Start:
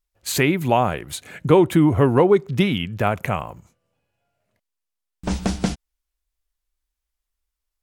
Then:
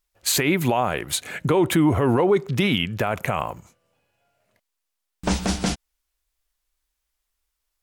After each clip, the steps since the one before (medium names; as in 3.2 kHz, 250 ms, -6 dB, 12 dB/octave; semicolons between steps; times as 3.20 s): in parallel at -2 dB: compressor with a negative ratio -20 dBFS; on the sum: bass shelf 290 Hz -7 dB; peak limiter -10.5 dBFS, peak gain reduction 9.5 dB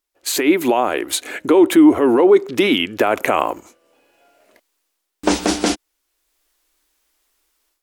resonant low shelf 210 Hz -12.5 dB, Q 3; level rider gain up to 14 dB; trim -1 dB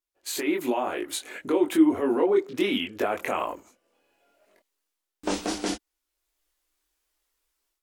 chorus voices 6, 0.93 Hz, delay 22 ms, depth 3 ms; trim -7.5 dB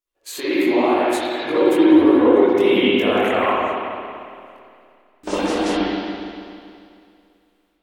reverberation RT60 2.4 s, pre-delay 55 ms, DRR -10.5 dB; trim -1 dB